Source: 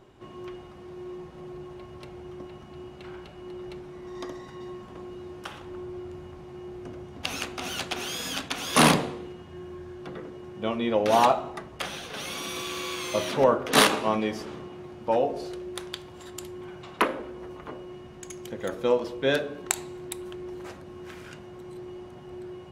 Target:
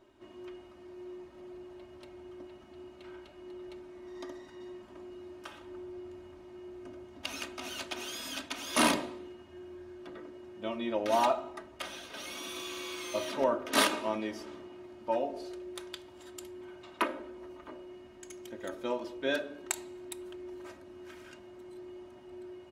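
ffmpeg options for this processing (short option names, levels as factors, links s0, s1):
-af "lowshelf=f=120:g=-7,aecho=1:1:3.2:0.68,volume=0.376"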